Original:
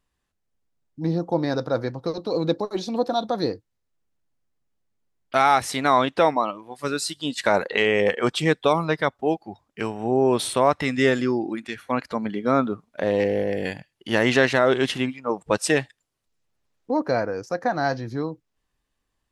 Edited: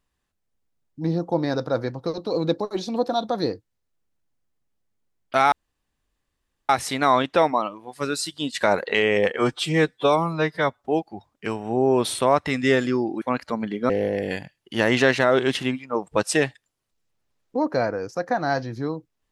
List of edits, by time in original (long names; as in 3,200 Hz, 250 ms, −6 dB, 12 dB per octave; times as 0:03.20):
0:05.52: splice in room tone 1.17 s
0:08.22–0:09.19: time-stretch 1.5×
0:11.56–0:11.84: remove
0:12.52–0:13.24: remove